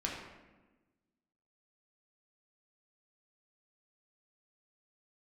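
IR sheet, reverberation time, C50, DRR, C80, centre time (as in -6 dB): 1.2 s, 2.0 dB, -3.0 dB, 4.5 dB, 56 ms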